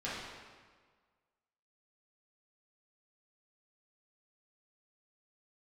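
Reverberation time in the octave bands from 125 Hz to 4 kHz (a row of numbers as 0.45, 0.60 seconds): 1.5, 1.5, 1.6, 1.6, 1.4, 1.2 seconds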